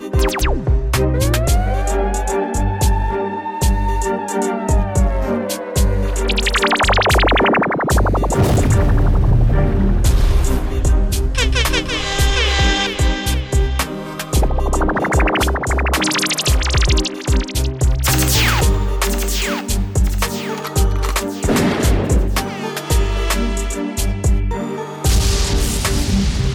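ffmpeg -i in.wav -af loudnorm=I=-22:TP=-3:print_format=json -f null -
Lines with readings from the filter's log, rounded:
"input_i" : "-17.4",
"input_tp" : "-4.4",
"input_lra" : "3.8",
"input_thresh" : "-27.4",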